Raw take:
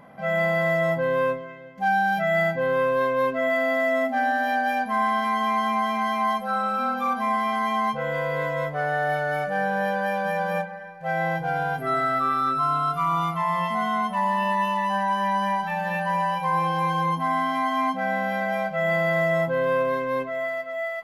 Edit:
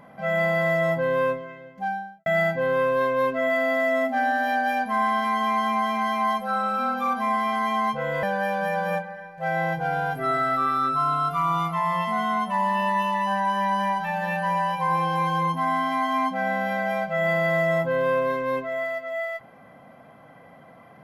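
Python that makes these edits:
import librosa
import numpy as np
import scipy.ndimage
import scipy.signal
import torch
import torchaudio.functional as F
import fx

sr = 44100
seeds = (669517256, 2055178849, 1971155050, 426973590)

y = fx.studio_fade_out(x, sr, start_s=1.58, length_s=0.68)
y = fx.edit(y, sr, fx.cut(start_s=8.23, length_s=1.63), tone=tone)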